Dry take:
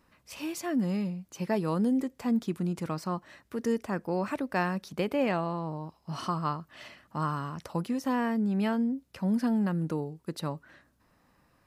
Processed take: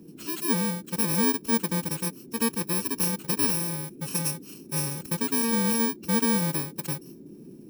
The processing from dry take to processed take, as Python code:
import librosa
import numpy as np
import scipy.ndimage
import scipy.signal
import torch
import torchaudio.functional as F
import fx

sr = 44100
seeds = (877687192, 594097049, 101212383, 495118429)

y = fx.bit_reversed(x, sr, seeds[0], block=64)
y = fx.dmg_noise_band(y, sr, seeds[1], low_hz=150.0, high_hz=380.0, level_db=-48.0)
y = fx.stretch_vocoder(y, sr, factor=0.66)
y = y * 10.0 ** (3.5 / 20.0)